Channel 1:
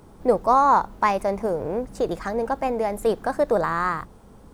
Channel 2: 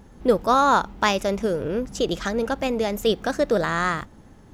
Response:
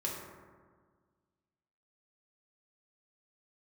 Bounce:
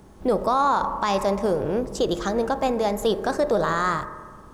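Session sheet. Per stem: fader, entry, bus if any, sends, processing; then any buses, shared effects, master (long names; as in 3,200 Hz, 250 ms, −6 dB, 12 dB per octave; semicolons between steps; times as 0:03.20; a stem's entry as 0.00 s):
−4.5 dB, 0.00 s, send −6 dB, no processing
−7.0 dB, 0.00 s, no send, Butterworth low-pass 12,000 Hz; high-shelf EQ 2,200 Hz +6.5 dB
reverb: on, RT60 1.6 s, pre-delay 3 ms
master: brickwall limiter −12 dBFS, peak gain reduction 8.5 dB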